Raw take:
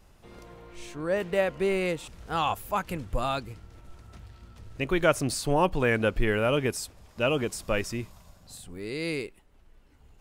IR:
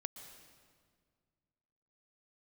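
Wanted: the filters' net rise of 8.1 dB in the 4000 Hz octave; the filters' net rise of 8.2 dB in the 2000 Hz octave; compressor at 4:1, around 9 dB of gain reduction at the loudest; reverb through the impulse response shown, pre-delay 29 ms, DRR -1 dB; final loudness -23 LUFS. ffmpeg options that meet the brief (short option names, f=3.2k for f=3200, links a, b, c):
-filter_complex "[0:a]equalizer=f=2k:t=o:g=8.5,equalizer=f=4k:t=o:g=7.5,acompressor=threshold=-25dB:ratio=4,asplit=2[a][b];[1:a]atrim=start_sample=2205,adelay=29[c];[b][c]afir=irnorm=-1:irlink=0,volume=3.5dB[d];[a][d]amix=inputs=2:normalize=0,volume=3.5dB"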